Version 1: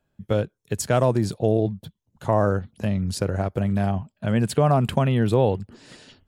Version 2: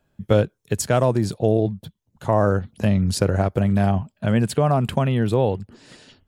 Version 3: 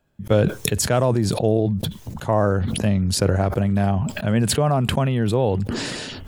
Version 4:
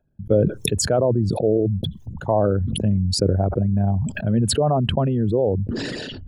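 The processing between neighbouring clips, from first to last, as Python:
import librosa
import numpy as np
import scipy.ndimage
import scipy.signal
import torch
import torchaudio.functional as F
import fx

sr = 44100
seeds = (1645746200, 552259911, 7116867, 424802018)

y1 = fx.rider(x, sr, range_db=3, speed_s=0.5)
y1 = F.gain(torch.from_numpy(y1), 2.5).numpy()
y2 = fx.sustainer(y1, sr, db_per_s=23.0)
y2 = F.gain(torch.from_numpy(y2), -1.0).numpy()
y3 = fx.envelope_sharpen(y2, sr, power=2.0)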